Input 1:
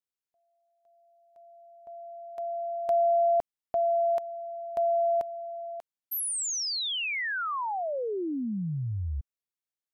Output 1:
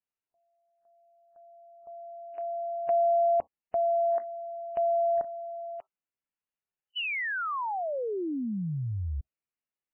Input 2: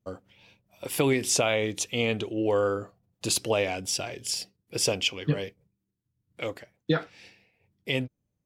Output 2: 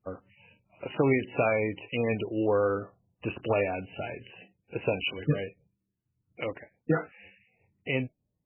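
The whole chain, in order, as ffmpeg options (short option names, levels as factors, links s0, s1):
-ar 12000 -c:a libmp3lame -b:a 8k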